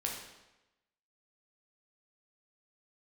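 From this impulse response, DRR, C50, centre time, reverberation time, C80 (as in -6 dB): -1.5 dB, 3.5 dB, 45 ms, 1.0 s, 6.0 dB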